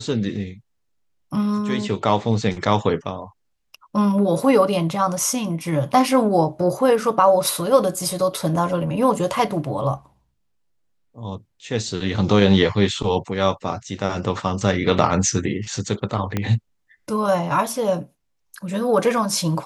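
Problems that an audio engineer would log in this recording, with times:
16.37 s: pop -9 dBFS

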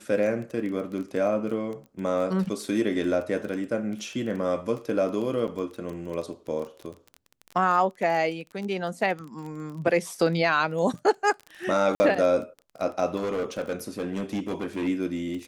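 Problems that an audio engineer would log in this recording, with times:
crackle 16 per s -32 dBFS
1.86 s: pop -36 dBFS
5.47–5.48 s: dropout 8.2 ms
11.95–12.00 s: dropout 50 ms
13.16–14.88 s: clipped -24.5 dBFS

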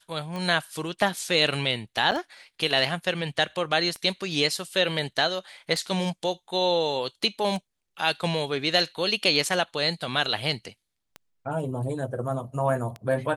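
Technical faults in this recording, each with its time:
tick 33 1/3 rpm -21 dBFS
2.11–2.12 s: dropout 7.7 ms

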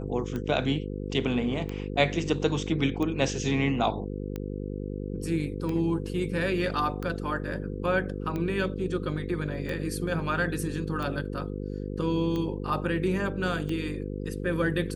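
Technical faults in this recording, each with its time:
buzz 50 Hz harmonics 10 -34 dBFS
tick 45 rpm -21 dBFS

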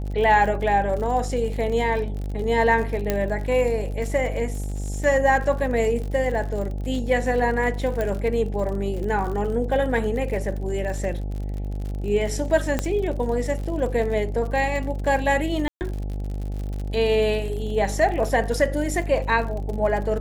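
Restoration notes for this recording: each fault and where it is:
buzz 50 Hz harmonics 17 -28 dBFS
crackle 60 per s -31 dBFS
3.10 s: pop -8 dBFS
8.01 s: pop
12.79 s: pop -9 dBFS
15.68–15.81 s: dropout 129 ms

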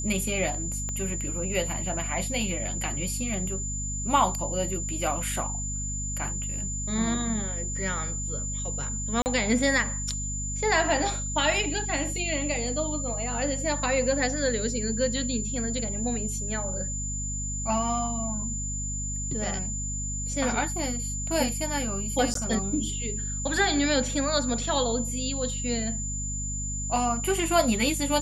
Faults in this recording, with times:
hum 50 Hz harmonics 5 -34 dBFS
whine 7.1 kHz -32 dBFS
0.89 s: pop -21 dBFS
9.22–9.26 s: dropout 39 ms
22.34–22.35 s: dropout 13 ms

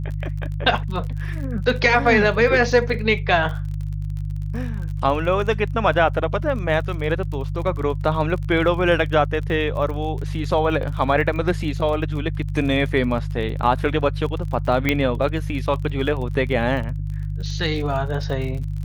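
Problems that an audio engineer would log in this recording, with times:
crackle 34 per s -30 dBFS
hum 50 Hz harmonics 3 -26 dBFS
14.89 s: pop -6 dBFS

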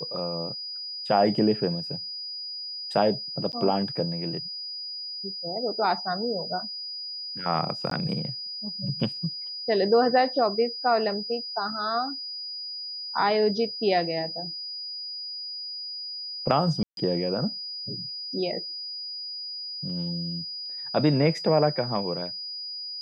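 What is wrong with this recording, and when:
whine 4.9 kHz -33 dBFS
3.52–3.53 s: dropout 9.7 ms
7.90–7.91 s: dropout 13 ms
16.83–16.97 s: dropout 142 ms

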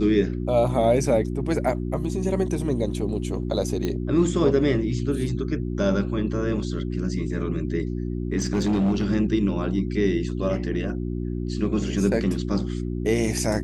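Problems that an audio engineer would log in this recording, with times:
hum 60 Hz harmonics 6 -28 dBFS
3.85 s: pop -14 dBFS
8.37–9.07 s: clipped -18 dBFS

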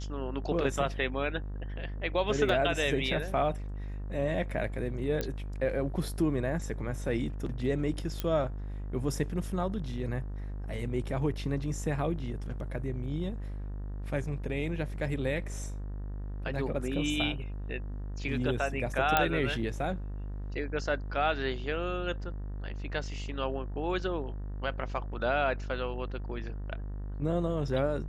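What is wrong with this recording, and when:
buzz 50 Hz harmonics 38 -37 dBFS
2.49 s: dropout 2.5 ms
5.21 s: pop -18 dBFS
8.20 s: pop -17 dBFS
19.17 s: pop -9 dBFS

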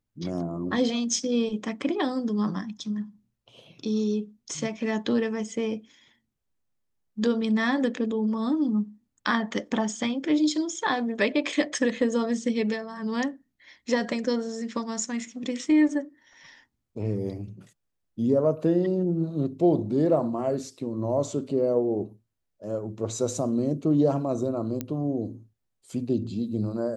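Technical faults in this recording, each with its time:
24.81 s: pop -16 dBFS

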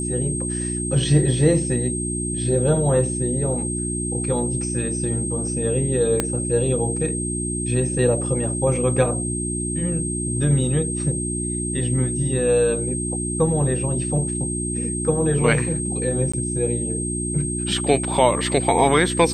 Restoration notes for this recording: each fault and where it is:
hum 60 Hz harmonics 6 -27 dBFS
whine 8.4 kHz -27 dBFS
6.20 s: pop -6 dBFS
16.32–16.34 s: dropout 15 ms

